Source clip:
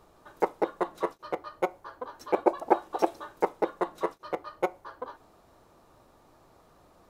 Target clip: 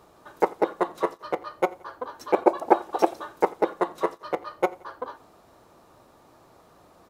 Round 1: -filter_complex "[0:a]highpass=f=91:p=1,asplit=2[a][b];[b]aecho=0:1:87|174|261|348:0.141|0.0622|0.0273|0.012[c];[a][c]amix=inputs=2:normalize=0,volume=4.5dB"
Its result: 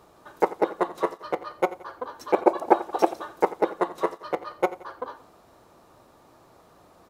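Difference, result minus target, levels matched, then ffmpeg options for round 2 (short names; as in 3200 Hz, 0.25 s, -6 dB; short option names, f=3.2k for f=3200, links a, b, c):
echo-to-direct +6 dB
-filter_complex "[0:a]highpass=f=91:p=1,asplit=2[a][b];[b]aecho=0:1:87|174|261:0.0708|0.0311|0.0137[c];[a][c]amix=inputs=2:normalize=0,volume=4.5dB"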